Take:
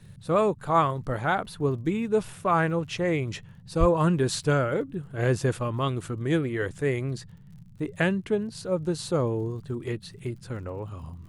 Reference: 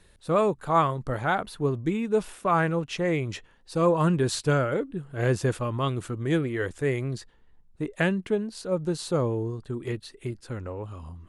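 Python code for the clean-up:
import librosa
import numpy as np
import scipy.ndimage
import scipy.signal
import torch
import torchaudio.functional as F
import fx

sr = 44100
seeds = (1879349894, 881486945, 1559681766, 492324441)

y = fx.fix_declick_ar(x, sr, threshold=6.5)
y = fx.highpass(y, sr, hz=140.0, slope=24, at=(3.79, 3.91), fade=0.02)
y = fx.noise_reduce(y, sr, print_start_s=7.3, print_end_s=7.8, reduce_db=6.0)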